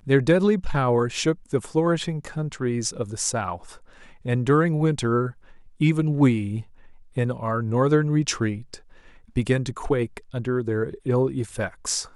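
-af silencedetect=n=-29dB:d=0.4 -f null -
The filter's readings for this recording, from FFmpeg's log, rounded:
silence_start: 3.56
silence_end: 4.26 | silence_duration: 0.70
silence_start: 5.30
silence_end: 5.81 | silence_duration: 0.51
silence_start: 6.60
silence_end: 7.17 | silence_duration: 0.57
silence_start: 8.75
silence_end: 9.36 | silence_duration: 0.61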